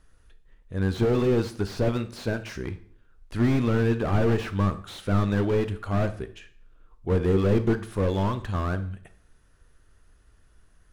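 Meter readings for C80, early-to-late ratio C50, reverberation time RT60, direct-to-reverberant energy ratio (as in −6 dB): 18.5 dB, 14.0 dB, 0.55 s, 10.5 dB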